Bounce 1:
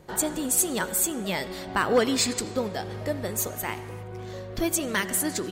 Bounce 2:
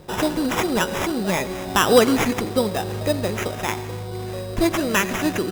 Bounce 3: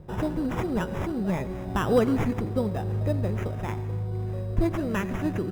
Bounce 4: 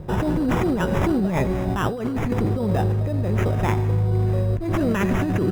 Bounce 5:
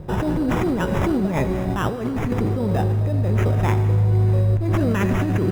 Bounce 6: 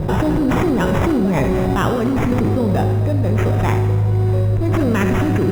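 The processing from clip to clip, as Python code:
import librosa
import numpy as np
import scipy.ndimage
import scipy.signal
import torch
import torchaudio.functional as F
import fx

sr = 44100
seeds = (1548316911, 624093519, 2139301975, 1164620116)

y1 = fx.high_shelf(x, sr, hz=5700.0, db=-11.5)
y1 = fx.sample_hold(y1, sr, seeds[0], rate_hz=4400.0, jitter_pct=0)
y1 = y1 * 10.0 ** (7.5 / 20.0)
y2 = fx.curve_eq(y1, sr, hz=(130.0, 260.0, 1800.0, 4200.0), db=(0, -8, -15, -23))
y2 = y2 * 10.0 ** (3.0 / 20.0)
y3 = fx.over_compress(y2, sr, threshold_db=-29.0, ratio=-1.0)
y3 = y3 * 10.0 ** (8.0 / 20.0)
y4 = fx.rev_schroeder(y3, sr, rt60_s=3.8, comb_ms=29, drr_db=12.5)
y5 = fx.room_flutter(y4, sr, wall_m=10.6, rt60_s=0.34)
y5 = fx.env_flatten(y5, sr, amount_pct=70)
y5 = y5 * 10.0 ** (2.0 / 20.0)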